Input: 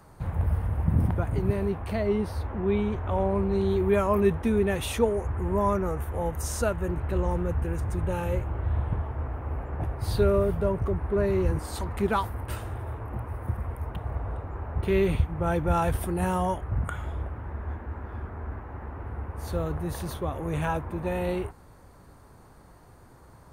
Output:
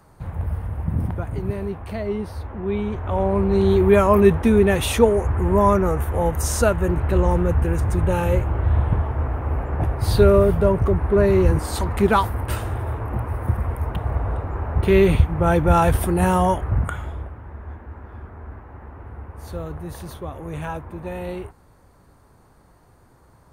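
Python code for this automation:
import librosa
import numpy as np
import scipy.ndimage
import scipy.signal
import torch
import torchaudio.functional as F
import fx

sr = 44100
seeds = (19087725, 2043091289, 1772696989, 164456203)

y = fx.gain(x, sr, db=fx.line((2.59, 0.0), (3.7, 8.5), (16.69, 8.5), (17.38, -1.5)))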